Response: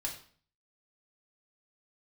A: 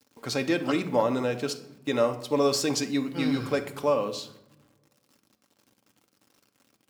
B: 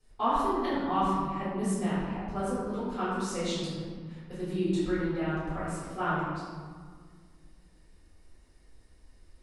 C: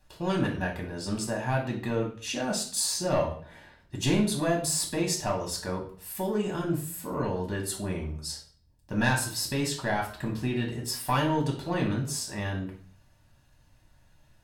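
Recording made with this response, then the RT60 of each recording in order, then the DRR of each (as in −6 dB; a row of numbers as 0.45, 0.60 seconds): C; 0.85, 1.8, 0.45 seconds; 5.0, −12.5, −1.0 decibels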